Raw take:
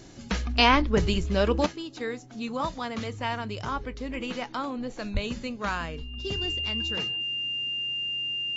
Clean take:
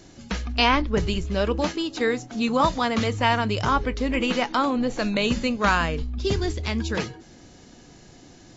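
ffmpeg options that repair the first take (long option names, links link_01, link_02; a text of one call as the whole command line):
ffmpeg -i in.wav -filter_complex "[0:a]bandreject=frequency=129.6:width_type=h:width=4,bandreject=frequency=259.2:width_type=h:width=4,bandreject=frequency=388.8:width_type=h:width=4,bandreject=frequency=2800:width=30,asplit=3[link_01][link_02][link_03];[link_01]afade=type=out:start_time=5.13:duration=0.02[link_04];[link_02]highpass=frequency=140:width=0.5412,highpass=frequency=140:width=1.3066,afade=type=in:start_time=5.13:duration=0.02,afade=type=out:start_time=5.25:duration=0.02[link_05];[link_03]afade=type=in:start_time=5.25:duration=0.02[link_06];[link_04][link_05][link_06]amix=inputs=3:normalize=0,asetnsamples=nb_out_samples=441:pad=0,asendcmd='1.66 volume volume 9.5dB',volume=0dB" out.wav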